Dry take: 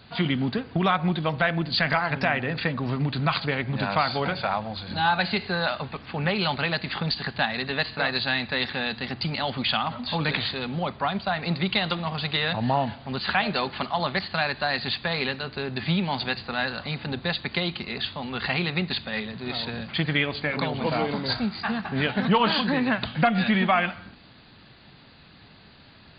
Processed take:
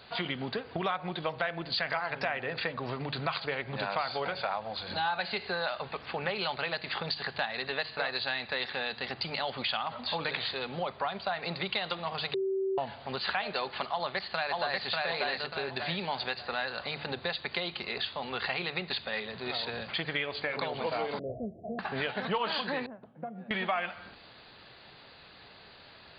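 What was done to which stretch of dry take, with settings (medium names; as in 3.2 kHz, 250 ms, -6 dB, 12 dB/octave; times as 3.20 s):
12.34–12.78 s: bleep 385 Hz -21 dBFS
13.91–14.87 s: echo throw 590 ms, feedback 30%, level -0.5 dB
21.19–21.79 s: Chebyshev low-pass 690 Hz, order 8
22.86–23.51 s: ladder band-pass 270 Hz, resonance 20%
whole clip: resonant low shelf 340 Hz -7.5 dB, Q 1.5; hum notches 50/100/150 Hz; compression 2.5:1, threshold -32 dBFS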